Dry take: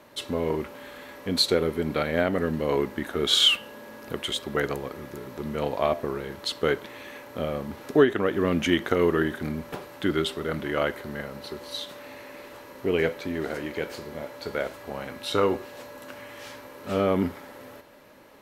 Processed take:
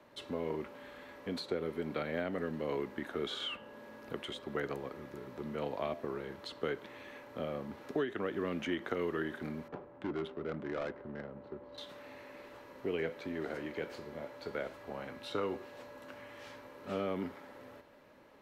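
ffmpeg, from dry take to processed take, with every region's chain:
ffmpeg -i in.wav -filter_complex "[0:a]asettb=1/sr,asplit=3[link_01][link_02][link_03];[link_01]atrim=end=9.684[link_04];[link_02]atrim=start=9.68:end=11.78,asetpts=PTS-STARTPTS,afade=type=in:duration=0.004:curve=qsin,afade=type=out:start_time=2.096:duration=0.004:curve=qsin,highshelf=frequency=7600:gain=-4.5,asoftclip=type=hard:threshold=-22.5dB,adynamicsmooth=sensitivity=2:basefreq=850[link_05];[link_03]atrim=start=11.776[link_06];[link_04][link_05]acrossfade=duration=0.004:curve1=hsin:curve2=qsin[link_07];[link_07][link_06]acrossfade=duration=0.004:curve1=qsin:curve2=hsin,equalizer=frequency=13000:width_type=o:width=1.8:gain=-10.5,acrossover=split=130|340|1900[link_08][link_09][link_10][link_11];[link_08]acompressor=threshold=-52dB:ratio=4[link_12];[link_09]acompressor=threshold=-32dB:ratio=4[link_13];[link_10]acompressor=threshold=-28dB:ratio=4[link_14];[link_11]acompressor=threshold=-37dB:ratio=4[link_15];[link_12][link_13][link_14][link_15]amix=inputs=4:normalize=0,volume=-7.5dB" out.wav

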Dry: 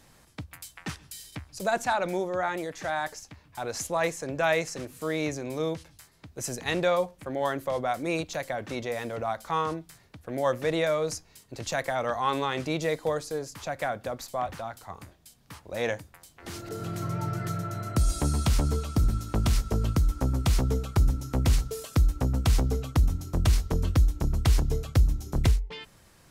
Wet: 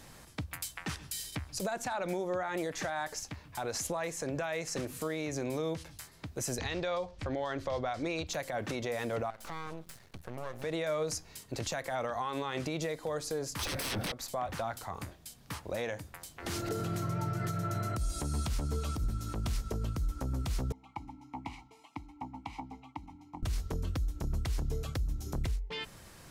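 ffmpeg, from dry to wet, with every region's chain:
ffmpeg -i in.wav -filter_complex "[0:a]asettb=1/sr,asplit=3[link_01][link_02][link_03];[link_01]atrim=end=6.584[link_04];[link_02]atrim=start=6.58:end=8.27,asetpts=PTS-STARTPTS,afade=type=in:duration=0.004:curve=qsin,afade=type=out:start_time=1.686:duration=0.004:curve=qsin,lowpass=frequency=5000:width_type=q:width=1.6,lowshelf=frequency=110:width_type=q:width=1.5:gain=9[link_05];[link_03]atrim=start=8.266[link_06];[link_04][link_05]acrossfade=duration=0.004:curve1=hsin:curve2=qsin[link_07];[link_07][link_06]acrossfade=duration=0.004:curve1=qsin:curve2=hsin,asettb=1/sr,asplit=3[link_08][link_09][link_10];[link_08]atrim=end=9.304[link_11];[link_09]atrim=start=9.3:end=10.64,asetpts=PTS-STARTPTS,afade=type=in:duration=0.004:curve=qsin,afade=type=out:start_time=1.336:duration=0.004:curve=qsin,bandreject=frequency=300:width=5.6,acompressor=threshold=-40dB:ratio=5:attack=3.2:release=140:knee=1:detection=peak,aeval=exprs='max(val(0),0)':channel_layout=same[link_12];[link_10]atrim=start=10.636[link_13];[link_11][link_12]acrossfade=duration=0.004:curve1=hsin:curve2=qsin[link_14];[link_14][link_13]acrossfade=duration=0.004:curve1=qsin:curve2=hsin,asettb=1/sr,asplit=3[link_15][link_16][link_17];[link_15]atrim=end=13.594[link_18];[link_16]atrim=start=13.59:end=14.12,asetpts=PTS-STARTPTS,afade=type=in:duration=0.004:curve=qsin,afade=type=out:start_time=0.526:duration=0.004:curve=qsin,aeval=exprs='0.133*sin(PI/2*10*val(0)/0.133)':channel_layout=same,bandreject=frequency=7000:width=5.4,acrossover=split=380|3000[link_19][link_20][link_21];[link_20]acompressor=threshold=-27dB:ratio=6:attack=3.2:release=140:knee=2.83:detection=peak[link_22];[link_19][link_22][link_21]amix=inputs=3:normalize=0[link_23];[link_17]atrim=start=14.116[link_24];[link_18][link_23]acrossfade=duration=0.004:curve1=hsin:curve2=qsin[link_25];[link_25][link_24]acrossfade=duration=0.004:curve1=qsin:curve2=hsin,asettb=1/sr,asplit=3[link_26][link_27][link_28];[link_26]atrim=end=20.724[link_29];[link_27]atrim=start=20.72:end=23.43,asetpts=PTS-STARTPTS,afade=type=in:duration=0.004:curve=qsin,afade=type=out:start_time=2.706:duration=0.004:curve=qsin,asplit=3[link_30][link_31][link_32];[link_30]bandpass=frequency=300:width_type=q:width=8,volume=0dB[link_33];[link_31]bandpass=frequency=870:width_type=q:width=8,volume=-6dB[link_34];[link_32]bandpass=frequency=2240:width_type=q:width=8,volume=-9dB[link_35];[link_33][link_34][link_35]amix=inputs=3:normalize=0,lowshelf=frequency=500:width_type=q:width=3:gain=-7,aecho=1:1:1:0.32,atrim=end_sample=119511[link_36];[link_28]atrim=start=23.426[link_37];[link_29][link_36]acrossfade=duration=0.004:curve1=hsin:curve2=qsin[link_38];[link_38][link_37]acrossfade=duration=0.004:curve1=qsin:curve2=hsin,acompressor=threshold=-33dB:ratio=6,alimiter=level_in=6dB:limit=-24dB:level=0:latency=1:release=72,volume=-6dB,volume=4.5dB" out.wav

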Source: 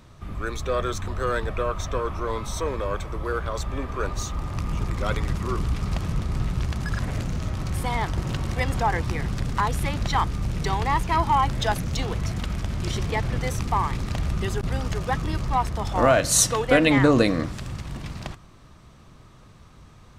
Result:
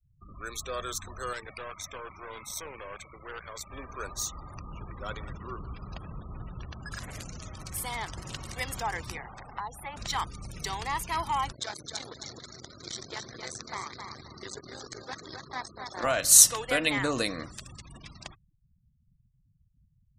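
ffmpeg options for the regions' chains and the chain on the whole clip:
ffmpeg -i in.wav -filter_complex "[0:a]asettb=1/sr,asplit=3[link_01][link_02][link_03];[link_01]atrim=end=1.334[link_04];[link_02]atrim=start=1.33:end=3.71,asetpts=PTS-STARTPTS,afade=type=in:duration=0.004:curve=qsin,afade=type=out:start_time=2.376:duration=0.004:curve=qsin,highpass=71,equalizer=frequency=2200:width=3.6:gain=8.5,aeval=exprs='(tanh(17.8*val(0)+0.75)-tanh(0.75))/17.8':channel_layout=same[link_05];[link_03]atrim=start=3.706[link_06];[link_04][link_05]acrossfade=duration=0.004:curve1=hsin:curve2=qsin[link_07];[link_07][link_06]acrossfade=duration=0.004:curve1=qsin:curve2=hsin,asettb=1/sr,asplit=3[link_08][link_09][link_10];[link_08]atrim=end=4.584[link_11];[link_09]atrim=start=4.58:end=6.92,asetpts=PTS-STARTPTS,afade=type=in:duration=0.004:curve=qsin,afade=type=out:start_time=2.336:duration=0.004:curve=qsin,highshelf=frequency=3600:gain=-10,bandreject=frequency=2100:width=10,aecho=1:1:179:0.168,atrim=end_sample=103194[link_12];[link_10]atrim=start=6.916[link_13];[link_11][link_12]acrossfade=duration=0.004:curve1=hsin:curve2=qsin[link_14];[link_14][link_13]acrossfade=duration=0.004:curve1=qsin:curve2=hsin,asettb=1/sr,asplit=3[link_15][link_16][link_17];[link_15]atrim=end=9.174[link_18];[link_16]atrim=start=9.17:end=9.97,asetpts=PTS-STARTPTS,afade=type=in:duration=0.004:curve=qsin,afade=type=out:start_time=0.796:duration=0.004:curve=qsin,acrossover=split=420|2600[link_19][link_20][link_21];[link_19]acompressor=threshold=-33dB:ratio=4[link_22];[link_20]acompressor=threshold=-33dB:ratio=4[link_23];[link_21]acompressor=threshold=-52dB:ratio=4[link_24];[link_22][link_23][link_24]amix=inputs=3:normalize=0,asoftclip=type=hard:threshold=-18dB,equalizer=frequency=810:width_type=o:width=0.58:gain=10.5[link_25];[link_17]atrim=start=9.966[link_26];[link_18][link_25]acrossfade=duration=0.004:curve1=hsin:curve2=qsin[link_27];[link_27][link_26]acrossfade=duration=0.004:curve1=qsin:curve2=hsin,asettb=1/sr,asplit=3[link_28][link_29][link_30];[link_28]atrim=end=11.524[link_31];[link_29]atrim=start=11.52:end=16.04,asetpts=PTS-STARTPTS,afade=type=in:duration=0.004:curve=qsin,afade=type=out:start_time=4.516:duration=0.004:curve=qsin,aeval=exprs='max(val(0),0)':channel_layout=same,highpass=120,equalizer=frequency=180:width_type=q:width=4:gain=-7,equalizer=frequency=370:width_type=q:width=4:gain=5,equalizer=frequency=870:width_type=q:width=4:gain=-3,equalizer=frequency=2800:width_type=q:width=4:gain=-10,equalizer=frequency=4200:width_type=q:width=4:gain=5,lowpass=frequency=7900:width=0.5412,lowpass=frequency=7900:width=1.3066,aecho=1:1:264|528|792:0.501|0.135|0.0365,atrim=end_sample=199332[link_32];[link_30]atrim=start=16.036[link_33];[link_31][link_32]acrossfade=duration=0.004:curve1=hsin:curve2=qsin[link_34];[link_34][link_33]acrossfade=duration=0.004:curve1=qsin:curve2=hsin,aemphasis=mode=production:type=75kf,afftfilt=real='re*gte(hypot(re,im),0.0178)':imag='im*gte(hypot(re,im),0.0178)':win_size=1024:overlap=0.75,lowshelf=frequency=470:gain=-8.5,volume=-7.5dB" out.wav

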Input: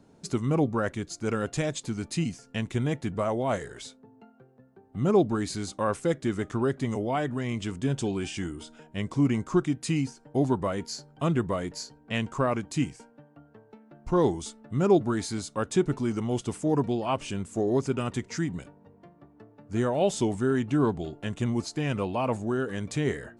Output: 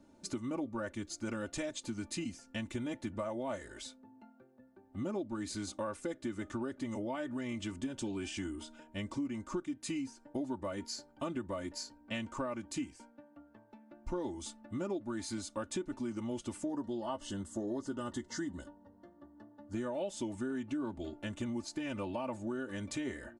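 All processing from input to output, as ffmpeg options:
ffmpeg -i in.wav -filter_complex "[0:a]asettb=1/sr,asplit=3[link_01][link_02][link_03];[link_01]atrim=end=16.684[link_04];[link_02]atrim=start=16.68:end=19.74,asetpts=PTS-STARTPTS,afade=type=in:duration=0.004:curve=qsin,afade=type=out:start_time=3.056:duration=0.004:curve=qsin,asuperstop=centerf=2400:order=4:qfactor=2.9,asplit=2[link_05][link_06];[link_06]adelay=14,volume=-13dB[link_07];[link_05][link_07]amix=inputs=2:normalize=0,atrim=end_sample=134946[link_08];[link_03]atrim=start=19.736[link_09];[link_04][link_08]acrossfade=duration=0.004:curve1=hsin:curve2=qsin[link_10];[link_10][link_09]acrossfade=duration=0.004:curve1=qsin:curve2=hsin,aecho=1:1:3.4:0.83,acompressor=threshold=-28dB:ratio=6,volume=-6.5dB" out.wav

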